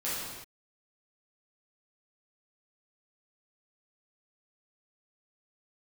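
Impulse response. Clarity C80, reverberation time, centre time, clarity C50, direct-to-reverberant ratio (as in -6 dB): 1.0 dB, no single decay rate, 99 ms, -2.0 dB, -10.5 dB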